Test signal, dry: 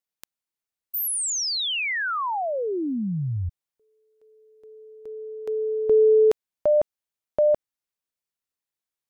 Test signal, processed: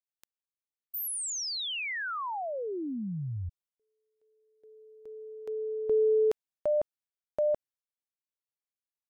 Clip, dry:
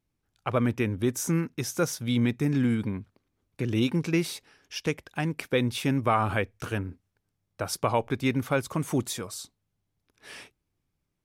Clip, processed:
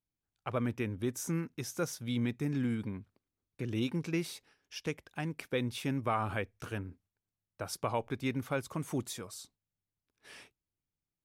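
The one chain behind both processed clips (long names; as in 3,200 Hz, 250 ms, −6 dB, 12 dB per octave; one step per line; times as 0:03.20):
noise gate −55 dBFS, range −6 dB
level −8 dB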